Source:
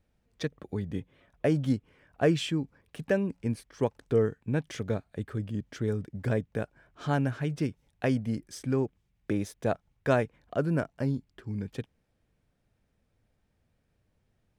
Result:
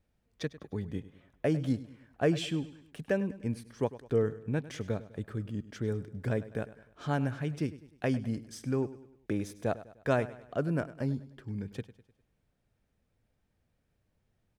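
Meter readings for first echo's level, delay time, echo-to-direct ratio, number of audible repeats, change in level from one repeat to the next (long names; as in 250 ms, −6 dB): −16.5 dB, 101 ms, −15.5 dB, 3, −7.0 dB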